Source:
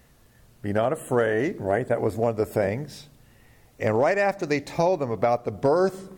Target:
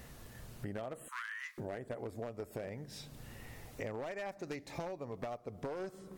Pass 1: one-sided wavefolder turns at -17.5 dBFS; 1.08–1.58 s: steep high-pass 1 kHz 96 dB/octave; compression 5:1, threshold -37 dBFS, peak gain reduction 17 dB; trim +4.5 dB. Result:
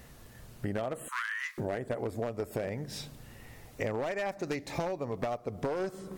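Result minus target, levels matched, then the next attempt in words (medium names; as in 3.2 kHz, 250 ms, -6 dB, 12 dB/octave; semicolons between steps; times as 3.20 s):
compression: peak gain reduction -8 dB
one-sided wavefolder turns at -17.5 dBFS; 1.08–1.58 s: steep high-pass 1 kHz 96 dB/octave; compression 5:1, threshold -47 dBFS, peak gain reduction 25 dB; trim +4.5 dB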